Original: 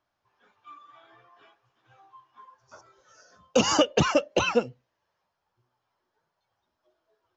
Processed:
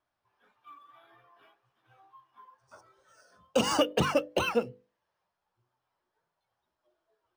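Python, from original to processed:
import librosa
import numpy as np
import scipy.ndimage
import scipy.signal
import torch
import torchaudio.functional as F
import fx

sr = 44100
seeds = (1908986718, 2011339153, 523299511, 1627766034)

y = fx.wow_flutter(x, sr, seeds[0], rate_hz=2.1, depth_cents=26.0)
y = fx.hum_notches(y, sr, base_hz=50, count=10)
y = np.interp(np.arange(len(y)), np.arange(len(y))[::3], y[::3])
y = y * librosa.db_to_amplitude(-3.5)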